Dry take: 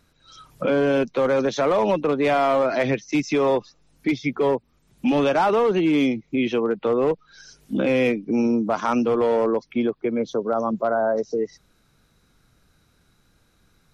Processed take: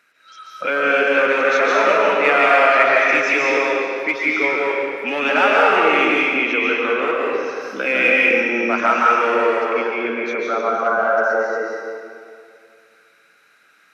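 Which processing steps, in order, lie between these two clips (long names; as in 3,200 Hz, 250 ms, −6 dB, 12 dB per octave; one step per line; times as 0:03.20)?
high-pass filter 450 Hz 12 dB per octave
flat-topped bell 1,900 Hz +11.5 dB 1.3 octaves
convolution reverb RT60 2.2 s, pre-delay 105 ms, DRR −4.5 dB
level −1 dB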